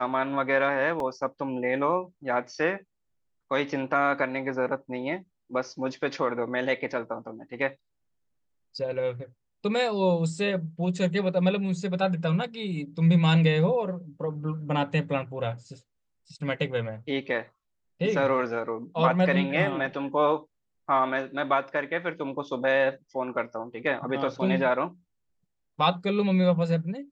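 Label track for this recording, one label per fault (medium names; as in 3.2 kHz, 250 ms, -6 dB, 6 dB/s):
1.000000	1.000000	dropout 2.1 ms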